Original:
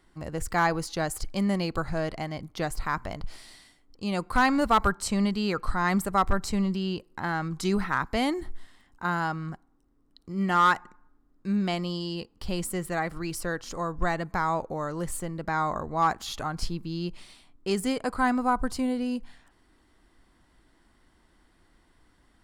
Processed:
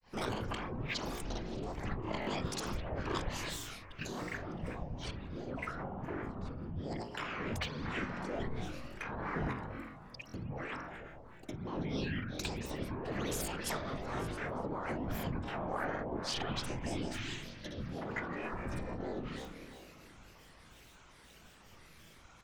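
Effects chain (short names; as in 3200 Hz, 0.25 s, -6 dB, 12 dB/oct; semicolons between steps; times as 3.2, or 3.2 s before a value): treble ducked by the level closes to 620 Hz, closed at -23 dBFS; tilt shelf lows -5.5 dB, about 1300 Hz; negative-ratio compressor -40 dBFS, ratio -1; whisperiser; on a send: echo with dull and thin repeats by turns 0.305 s, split 1900 Hz, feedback 53%, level -12 dB; on the sum: spring tank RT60 2.1 s, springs 30 ms, chirp 45 ms, DRR 3 dB; grains 0.204 s, grains 15/s, spray 39 ms, pitch spread up and down by 12 st; stuck buffer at 2.2/10.27, samples 1024, times 2; gain +2.5 dB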